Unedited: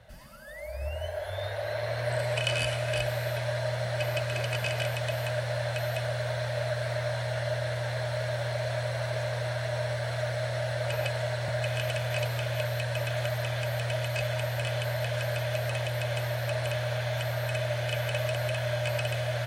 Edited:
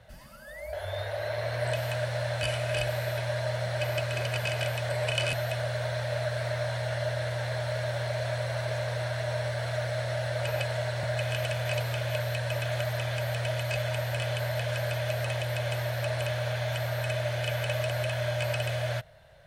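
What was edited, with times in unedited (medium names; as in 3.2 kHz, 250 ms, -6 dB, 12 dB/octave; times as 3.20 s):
0.73–1.18 s: delete
2.18–2.62 s: swap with 5.08–5.78 s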